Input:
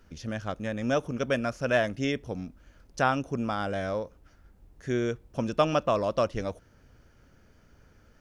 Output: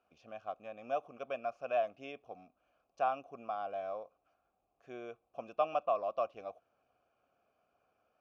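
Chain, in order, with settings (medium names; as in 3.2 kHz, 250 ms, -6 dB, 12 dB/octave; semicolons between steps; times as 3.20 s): vowel filter a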